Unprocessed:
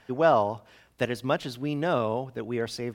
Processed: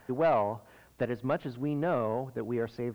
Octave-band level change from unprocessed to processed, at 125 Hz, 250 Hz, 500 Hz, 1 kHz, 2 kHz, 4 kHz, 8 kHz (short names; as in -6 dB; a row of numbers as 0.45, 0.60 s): -2.5 dB, -2.5 dB, -3.5 dB, -5.0 dB, -7.0 dB, -14.0 dB, under -15 dB